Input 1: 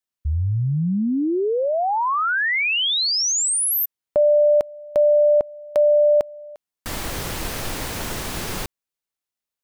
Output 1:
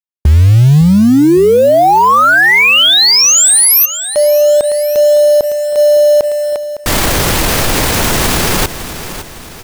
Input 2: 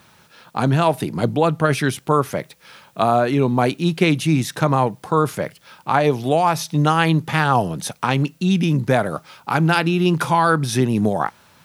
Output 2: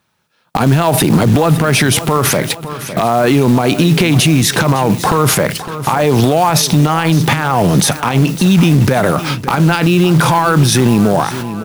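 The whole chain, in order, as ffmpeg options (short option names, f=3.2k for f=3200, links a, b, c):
-af "agate=range=-38dB:threshold=-40dB:ratio=16:release=224:detection=peak,acompressor=threshold=-28dB:ratio=10:attack=0.27:release=57:knee=1:detection=peak,acrusher=bits=5:mode=log:mix=0:aa=0.000001,aecho=1:1:558|1116|1674|2232:0.168|0.0739|0.0325|0.0143,alimiter=level_in=27.5dB:limit=-1dB:release=50:level=0:latency=1,volume=-2dB"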